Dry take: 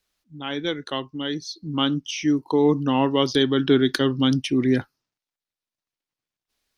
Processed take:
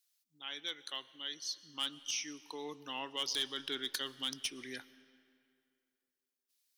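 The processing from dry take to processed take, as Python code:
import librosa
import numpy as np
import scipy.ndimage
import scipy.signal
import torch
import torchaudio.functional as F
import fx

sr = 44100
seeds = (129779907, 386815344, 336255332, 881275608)

y = np.diff(x, prepend=0.0)
y = np.clip(y, -10.0 ** (-26.5 / 20.0), 10.0 ** (-26.5 / 20.0))
y = fx.rev_freeverb(y, sr, rt60_s=2.5, hf_ratio=0.75, predelay_ms=75, drr_db=18.0)
y = F.gain(torch.from_numpy(y), -1.0).numpy()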